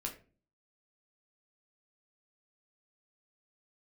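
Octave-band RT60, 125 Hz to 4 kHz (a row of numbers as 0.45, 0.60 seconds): 0.60, 0.60, 0.45, 0.30, 0.30, 0.25 seconds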